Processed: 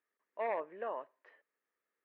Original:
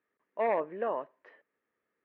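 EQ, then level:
high-pass filter 560 Hz 6 dB per octave
−4.5 dB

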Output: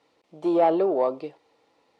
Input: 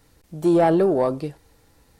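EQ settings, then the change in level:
band-pass filter 430–3,100 Hz
parametric band 1,600 Hz −11.5 dB 0.45 octaves
0.0 dB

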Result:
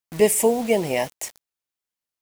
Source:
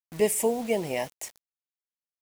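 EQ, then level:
no EQ move
+6.5 dB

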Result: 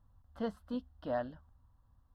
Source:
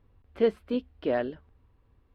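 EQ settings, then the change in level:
phaser with its sweep stopped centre 970 Hz, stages 4
−2.5 dB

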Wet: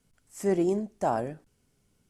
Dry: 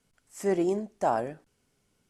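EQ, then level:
low-shelf EQ 280 Hz +8.5 dB
high-shelf EQ 6,500 Hz +5 dB
−2.5 dB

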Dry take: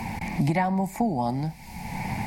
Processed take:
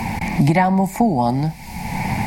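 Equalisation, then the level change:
no EQ move
+8.5 dB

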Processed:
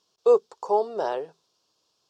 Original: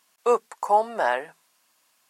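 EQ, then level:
drawn EQ curve 120 Hz 0 dB, 250 Hz −12 dB, 410 Hz +2 dB, 630 Hz −11 dB, 950 Hz −13 dB, 1,300 Hz −15 dB, 2,000 Hz −27 dB, 3,400 Hz −9 dB, 5,400 Hz −6 dB, 9,900 Hz −28 dB
+6.5 dB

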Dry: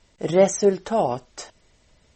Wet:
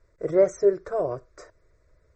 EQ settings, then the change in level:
low-pass filter 1,300 Hz 6 dB per octave
phaser with its sweep stopped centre 820 Hz, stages 6
0.0 dB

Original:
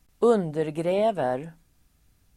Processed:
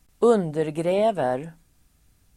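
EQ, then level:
parametric band 8,500 Hz +3 dB 0.63 octaves
+2.0 dB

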